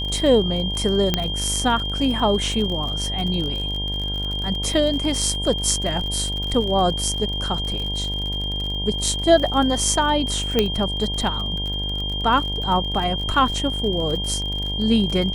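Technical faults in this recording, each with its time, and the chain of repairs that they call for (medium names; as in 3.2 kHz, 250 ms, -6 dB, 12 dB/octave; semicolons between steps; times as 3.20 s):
buzz 50 Hz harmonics 20 -28 dBFS
crackle 52 per s -27 dBFS
whine 3.2 kHz -26 dBFS
1.14 s: pop -4 dBFS
10.59 s: pop -4 dBFS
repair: de-click; de-hum 50 Hz, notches 20; band-stop 3.2 kHz, Q 30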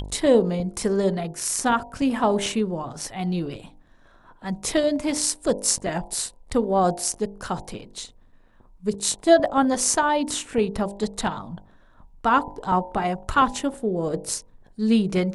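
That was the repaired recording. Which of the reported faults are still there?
nothing left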